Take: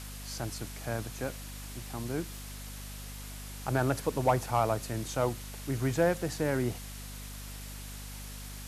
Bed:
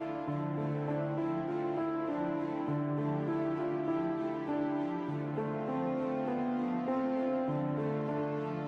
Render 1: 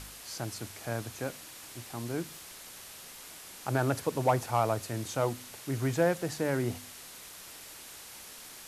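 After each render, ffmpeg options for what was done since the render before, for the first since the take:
-af "bandreject=f=50:t=h:w=4,bandreject=f=100:t=h:w=4,bandreject=f=150:t=h:w=4,bandreject=f=200:t=h:w=4,bandreject=f=250:t=h:w=4"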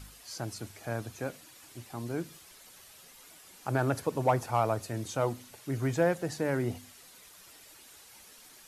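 -af "afftdn=nr=9:nf=-48"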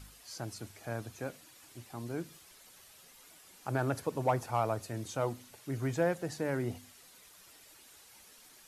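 -af "volume=-3.5dB"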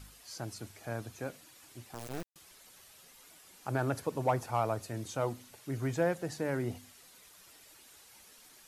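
-filter_complex "[0:a]asettb=1/sr,asplit=3[a][b][c];[a]atrim=end=1.944[d];[b]atrim=start=1.94:end=2.36,asetpts=PTS-STARTPTS,afade=t=in:d=0.004:c=qsin,afade=t=out:st=0.416:d=0.004:c=qsin,acrusher=bits=4:dc=4:mix=0:aa=0.000001[e];[c]atrim=start=2.356[f];[d][e]acrossfade=d=0.004:c1=hsin:c2=qsin[g];[g][f]acrossfade=d=0.004:c1=qsin:c2=hsin"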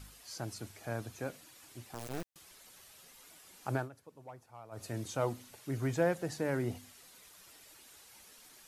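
-filter_complex "[0:a]asplit=3[a][b][c];[a]atrim=end=3.89,asetpts=PTS-STARTPTS,afade=t=out:st=3.74:d=0.15:silence=0.0944061[d];[b]atrim=start=3.89:end=4.71,asetpts=PTS-STARTPTS,volume=-20.5dB[e];[c]atrim=start=4.71,asetpts=PTS-STARTPTS,afade=t=in:d=0.15:silence=0.0944061[f];[d][e][f]concat=n=3:v=0:a=1"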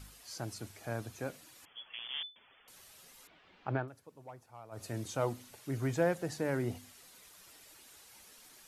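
-filter_complex "[0:a]asettb=1/sr,asplit=3[a][b][c];[a]atrim=end=1.654[d];[b]atrim=start=1.65:end=2.68,asetpts=PTS-STARTPTS,afade=t=in:d=0.004:c=qsin,afade=t=out:st=1.026:d=0.004:c=qsin,lowpass=f=3k:t=q:w=0.5098,lowpass=f=3k:t=q:w=0.6013,lowpass=f=3k:t=q:w=0.9,lowpass=f=3k:t=q:w=2.563,afreqshift=-3500[e];[c]atrim=start=2.676[f];[d][e]acrossfade=d=0.004:c1=hsin:c2=qsin[g];[g][f]acrossfade=d=0.004:c1=qsin:c2=hsin,asettb=1/sr,asplit=3[h][i][j];[h]atrim=end=3.274[k];[i]atrim=start=3.27:end=3.88,asetpts=PTS-STARTPTS,afade=t=in:d=0.004:c=qsin,afade=t=out:st=0.606:d=0.004:c=qsin,lowpass=f=3.3k:w=0.5412,lowpass=f=3.3k:w=1.3066[l];[j]atrim=start=3.876[m];[k][l]acrossfade=d=0.004:c1=hsin:c2=qsin[n];[n][m]acrossfade=d=0.004:c1=qsin:c2=hsin"

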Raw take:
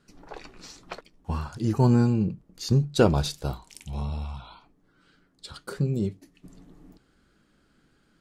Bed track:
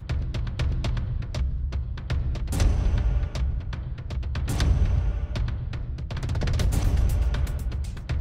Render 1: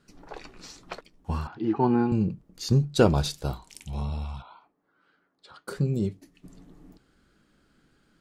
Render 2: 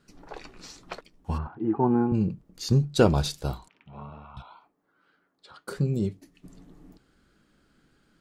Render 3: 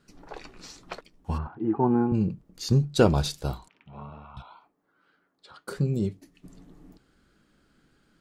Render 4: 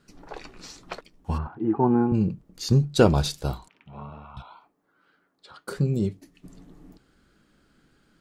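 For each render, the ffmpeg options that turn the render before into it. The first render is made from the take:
-filter_complex "[0:a]asettb=1/sr,asplit=3[a][b][c];[a]atrim=end=1.474[d];[b]atrim=start=1.47:end=2.12,asetpts=PTS-STARTPTS,afade=t=in:d=0.004:c=qsin,afade=t=out:st=0.646:d=0.004:c=qsin,highpass=230,equalizer=f=330:t=q:w=4:g=6,equalizer=f=560:t=q:w=4:g=-10,equalizer=f=800:t=q:w=4:g=8,lowpass=f=3.2k:w=0.5412,lowpass=f=3.2k:w=1.3066[e];[c]atrim=start=2.116[f];[d][e]acrossfade=d=0.004:c1=hsin:c2=qsin[g];[g][f]acrossfade=d=0.004:c1=qsin:c2=hsin,asettb=1/sr,asplit=3[h][i][j];[h]atrim=end=4.424[k];[i]atrim=start=4.42:end=5.68,asetpts=PTS-STARTPTS,afade=t=in:d=0.004:c=qsin,afade=t=out:st=1.256:d=0.004:c=qsin,bandpass=f=940:t=q:w=0.84[l];[j]atrim=start=5.676[m];[k][l]acrossfade=d=0.004:c1=hsin:c2=qsin[n];[n][m]acrossfade=d=0.004:c1=qsin:c2=hsin"
-filter_complex "[0:a]asplit=3[a][b][c];[a]afade=t=out:st=1.37:d=0.02[d];[b]lowpass=1.3k,afade=t=in:st=1.37:d=0.02,afade=t=out:st=2.13:d=0.02[e];[c]afade=t=in:st=2.13:d=0.02[f];[d][e][f]amix=inputs=3:normalize=0,asettb=1/sr,asplit=3[g][h][i];[g]atrim=end=3.684[j];[h]atrim=start=3.68:end=4.37,asetpts=PTS-STARTPTS,afade=t=in:d=0.004:c=qsin,afade=t=out:st=0.686:d=0.004:c=qsin,highpass=230,equalizer=f=230:t=q:w=4:g=-5,equalizer=f=340:t=q:w=4:g=-8,equalizer=f=500:t=q:w=4:g=-6,equalizer=f=800:t=q:w=4:g=-6,equalizer=f=1.3k:t=q:w=4:g=5,equalizer=f=2.1k:t=q:w=4:g=-6,lowpass=f=2.2k:w=0.5412,lowpass=f=2.2k:w=1.3066[k];[i]atrim=start=4.366[l];[j][k]acrossfade=d=0.004:c1=hsin:c2=qsin[m];[m][l]acrossfade=d=0.004:c1=qsin:c2=hsin"
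-af anull
-af "volume=2dB"

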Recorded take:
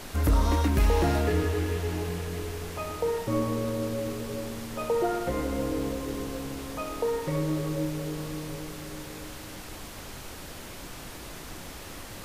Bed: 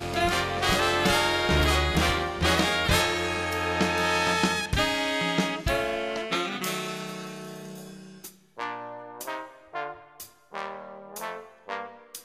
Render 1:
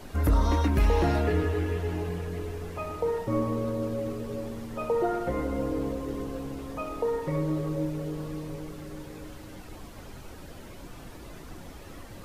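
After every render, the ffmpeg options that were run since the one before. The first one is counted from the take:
-af "afftdn=nr=10:nf=-42"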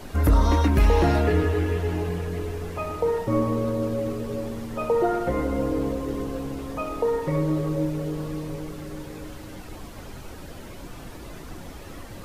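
-af "volume=4.5dB"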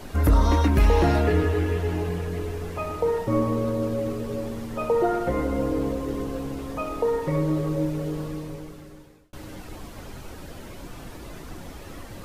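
-filter_complex "[0:a]asplit=2[a][b];[a]atrim=end=9.33,asetpts=PTS-STARTPTS,afade=t=out:st=8.17:d=1.16[c];[b]atrim=start=9.33,asetpts=PTS-STARTPTS,afade=t=in:d=0.004:c=hsin[d];[c][d]concat=n=2:v=0:a=1"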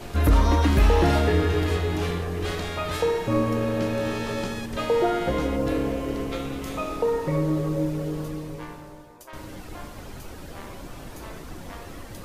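-filter_complex "[1:a]volume=-10dB[a];[0:a][a]amix=inputs=2:normalize=0"

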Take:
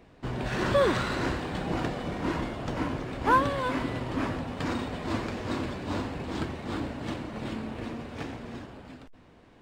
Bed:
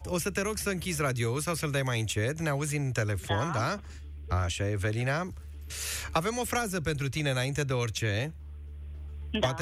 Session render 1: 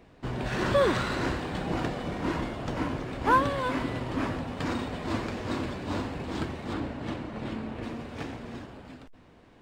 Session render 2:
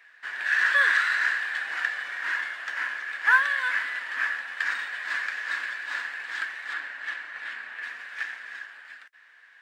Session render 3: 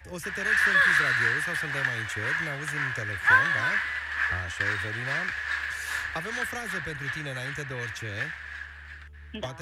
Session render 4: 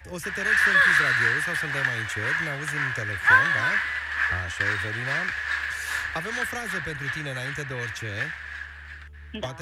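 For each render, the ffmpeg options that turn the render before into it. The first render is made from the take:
-filter_complex "[0:a]asettb=1/sr,asplit=3[a][b][c];[a]atrim=end=6.734[d];[b]atrim=start=6.73:end=7.83,asetpts=PTS-STARTPTS,afade=t=in:d=0.004:c=qsin,afade=t=out:st=1.096:d=0.004:c=qsin,highshelf=f=5.4k:g=-8.5[e];[c]atrim=start=7.826[f];[d][e]acrossfade=d=0.004:c1=hsin:c2=qsin[g];[g][f]acrossfade=d=0.004:c1=qsin:c2=hsin"
-af "highpass=f=1.7k:t=q:w=8.9"
-filter_complex "[1:a]volume=-7.5dB[a];[0:a][a]amix=inputs=2:normalize=0"
-af "volume=2.5dB"

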